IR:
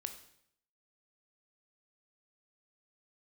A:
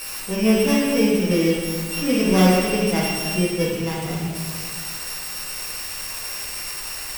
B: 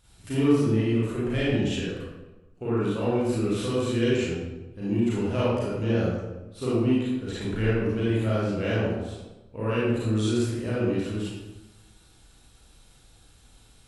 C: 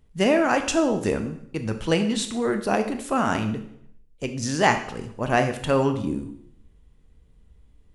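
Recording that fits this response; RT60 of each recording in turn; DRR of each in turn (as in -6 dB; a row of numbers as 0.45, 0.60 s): C; 1.6, 1.1, 0.70 s; -7.0, -9.5, 7.0 dB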